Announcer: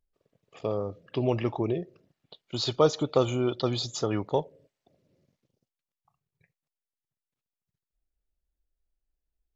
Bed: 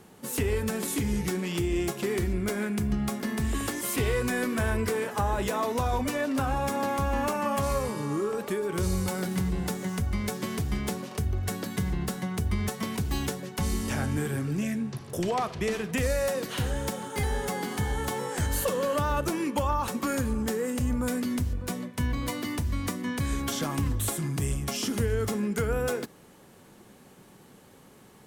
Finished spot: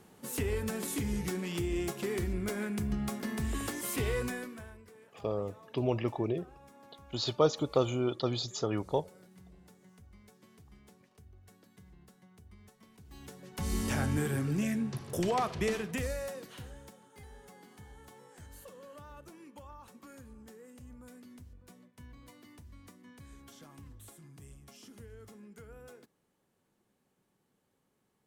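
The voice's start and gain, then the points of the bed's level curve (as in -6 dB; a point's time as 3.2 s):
4.60 s, -4.0 dB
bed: 4.23 s -5.5 dB
4.83 s -28 dB
12.96 s -28 dB
13.79 s -2 dB
15.66 s -2 dB
17.02 s -23.5 dB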